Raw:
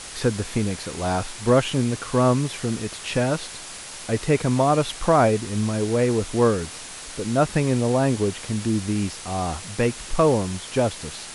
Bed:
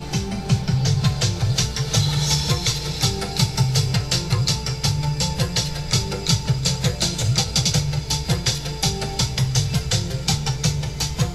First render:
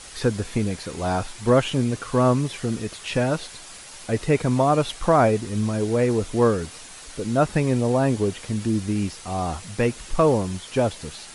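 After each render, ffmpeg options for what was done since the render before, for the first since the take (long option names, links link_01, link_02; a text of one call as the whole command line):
ffmpeg -i in.wav -af "afftdn=noise_reduction=6:noise_floor=-38" out.wav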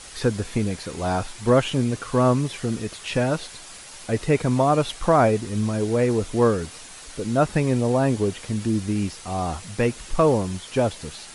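ffmpeg -i in.wav -af anull out.wav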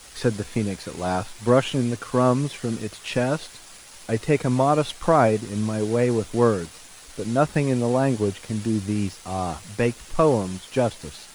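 ffmpeg -i in.wav -filter_complex "[0:a]acrossover=split=100[link_01][link_02];[link_01]flanger=delay=15.5:depth=5:speed=0.18[link_03];[link_02]aeval=exprs='sgn(val(0))*max(abs(val(0))-0.00376,0)':channel_layout=same[link_04];[link_03][link_04]amix=inputs=2:normalize=0" out.wav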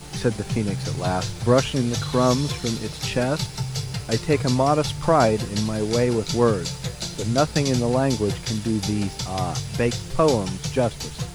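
ffmpeg -i in.wav -i bed.wav -filter_complex "[1:a]volume=-9dB[link_01];[0:a][link_01]amix=inputs=2:normalize=0" out.wav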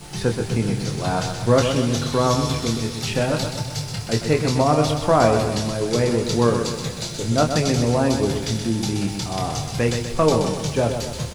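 ffmpeg -i in.wav -filter_complex "[0:a]asplit=2[link_01][link_02];[link_02]adelay=26,volume=-7dB[link_03];[link_01][link_03]amix=inputs=2:normalize=0,aecho=1:1:126|252|378|504|630|756:0.447|0.237|0.125|0.0665|0.0352|0.0187" out.wav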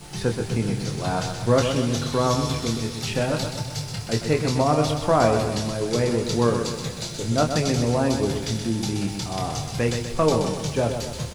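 ffmpeg -i in.wav -af "volume=-2.5dB" out.wav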